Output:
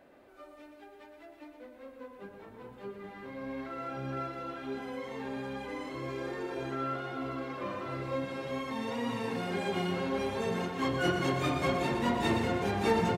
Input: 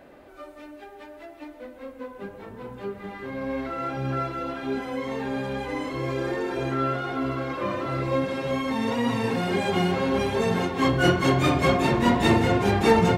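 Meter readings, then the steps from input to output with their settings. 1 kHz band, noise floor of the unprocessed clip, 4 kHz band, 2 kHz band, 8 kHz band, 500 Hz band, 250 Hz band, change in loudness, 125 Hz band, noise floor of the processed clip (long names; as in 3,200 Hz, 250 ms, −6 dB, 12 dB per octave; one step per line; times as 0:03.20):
−8.5 dB, −46 dBFS, −8.5 dB, −8.5 dB, −8.5 dB, −8.5 dB, −9.5 dB, −9.0 dB, −10.5 dB, −54 dBFS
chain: low-shelf EQ 110 Hz −6 dB
single-tap delay 119 ms −7.5 dB
level −9 dB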